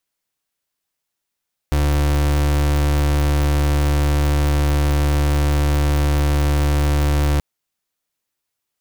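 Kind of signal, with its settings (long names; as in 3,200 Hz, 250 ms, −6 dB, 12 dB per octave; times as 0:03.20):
pulse wave 73.1 Hz, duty 35% −16.5 dBFS 5.68 s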